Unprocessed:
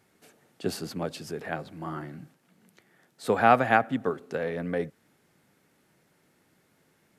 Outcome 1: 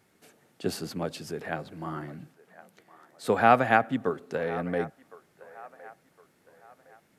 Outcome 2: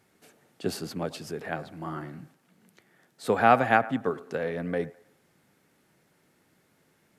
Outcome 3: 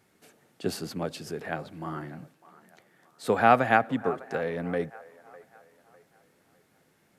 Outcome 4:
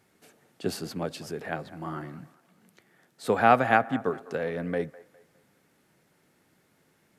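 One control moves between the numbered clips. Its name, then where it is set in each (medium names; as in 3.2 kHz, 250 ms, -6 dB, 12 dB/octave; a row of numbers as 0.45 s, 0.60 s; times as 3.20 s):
feedback echo behind a band-pass, time: 1062 ms, 104 ms, 603 ms, 204 ms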